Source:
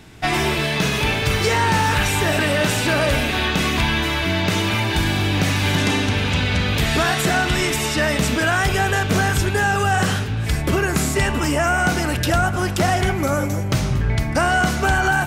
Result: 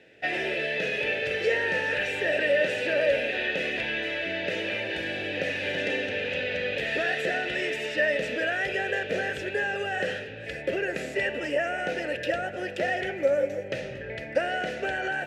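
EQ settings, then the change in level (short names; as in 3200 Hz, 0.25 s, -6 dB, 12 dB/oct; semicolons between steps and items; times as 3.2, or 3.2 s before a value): vowel filter e; +5.0 dB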